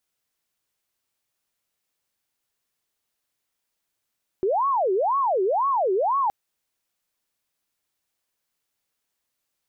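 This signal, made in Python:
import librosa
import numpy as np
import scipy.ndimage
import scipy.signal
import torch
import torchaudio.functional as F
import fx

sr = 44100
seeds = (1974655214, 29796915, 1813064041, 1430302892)

y = fx.siren(sr, length_s=1.87, kind='wail', low_hz=370.0, high_hz=1120.0, per_s=2.0, wave='sine', level_db=-19.0)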